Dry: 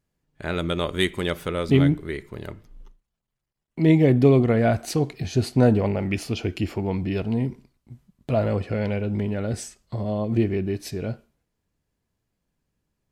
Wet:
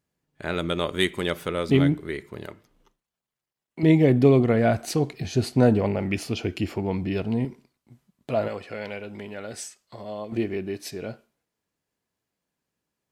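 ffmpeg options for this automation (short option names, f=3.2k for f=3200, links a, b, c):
-af "asetnsamples=n=441:p=0,asendcmd='2.46 highpass f 380;3.83 highpass f 100;7.45 highpass f 340;8.48 highpass f 930;10.32 highpass f 380',highpass=f=140:p=1"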